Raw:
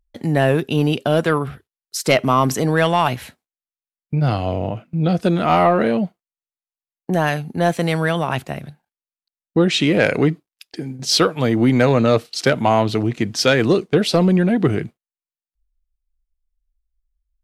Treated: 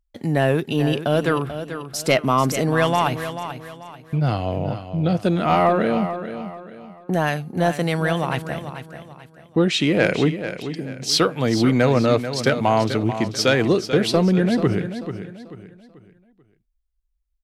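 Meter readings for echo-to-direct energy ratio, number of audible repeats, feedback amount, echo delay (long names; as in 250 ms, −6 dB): −10.0 dB, 3, 35%, 438 ms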